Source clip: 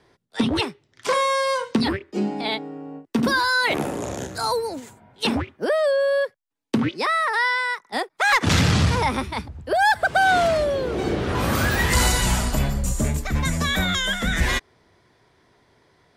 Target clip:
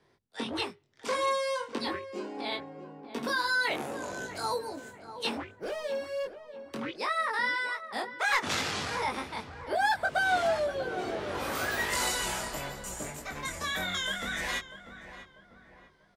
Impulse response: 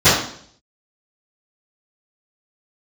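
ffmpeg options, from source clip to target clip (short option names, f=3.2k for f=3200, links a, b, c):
-filter_complex "[0:a]bandreject=f=50:t=h:w=6,bandreject=f=100:t=h:w=6,acrossover=split=330[a][b];[a]acompressor=threshold=-37dB:ratio=5[c];[c][b]amix=inputs=2:normalize=0,asettb=1/sr,asplit=3[d][e][f];[d]atrim=end=5.574[g];[e]atrim=start=5.57:end=6.76,asetpts=PTS-STARTPTS,afade=t=in:d=0.004:c=qsin,afade=t=out:st=1.186:d=0.004:c=qsin,asoftclip=type=hard:threshold=-23.5dB[h];[f]atrim=start=6.756[i];[g][h]acrossfade=d=0.004:c1=hsin:c2=qsin[j];[j][i]acrossfade=d=0.004:c1=qsin:c2=hsin,flanger=delay=20:depth=2.4:speed=0.69,asplit=2[k][l];[l]adelay=643,lowpass=f=1.6k:p=1,volume=-11dB,asplit=2[m][n];[n]adelay=643,lowpass=f=1.6k:p=1,volume=0.46,asplit=2[o][p];[p]adelay=643,lowpass=f=1.6k:p=1,volume=0.46,asplit=2[q][r];[r]adelay=643,lowpass=f=1.6k:p=1,volume=0.46,asplit=2[s][t];[t]adelay=643,lowpass=f=1.6k:p=1,volume=0.46[u];[k][m][o][q][s][u]amix=inputs=6:normalize=0,volume=-5.5dB"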